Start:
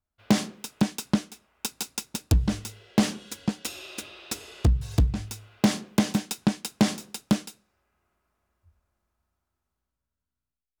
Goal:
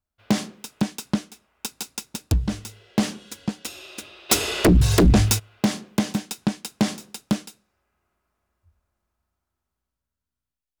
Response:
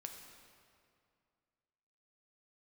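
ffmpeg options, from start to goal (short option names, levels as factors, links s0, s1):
-filter_complex "[0:a]asplit=3[s0][s1][s2];[s0]afade=t=out:st=4.29:d=0.02[s3];[s1]aeval=exprs='0.316*sin(PI/2*5.62*val(0)/0.316)':c=same,afade=t=in:st=4.29:d=0.02,afade=t=out:st=5.38:d=0.02[s4];[s2]afade=t=in:st=5.38:d=0.02[s5];[s3][s4][s5]amix=inputs=3:normalize=0"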